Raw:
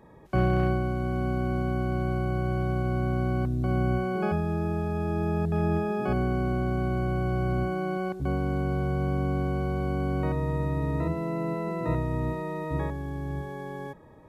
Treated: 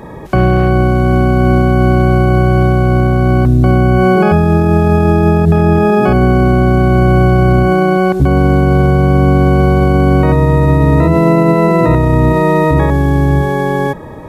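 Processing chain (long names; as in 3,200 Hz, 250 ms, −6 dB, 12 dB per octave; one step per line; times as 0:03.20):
boost into a limiter +24 dB
level −1 dB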